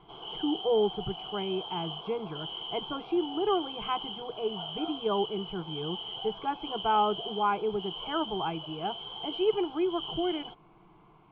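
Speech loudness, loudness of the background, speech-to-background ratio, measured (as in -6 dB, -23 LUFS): -32.5 LUFS, -38.5 LUFS, 6.0 dB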